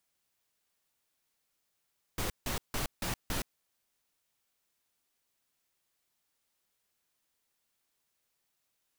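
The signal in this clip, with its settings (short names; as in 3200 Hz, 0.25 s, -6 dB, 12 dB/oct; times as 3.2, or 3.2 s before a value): noise bursts pink, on 0.12 s, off 0.16 s, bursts 5, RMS -33.5 dBFS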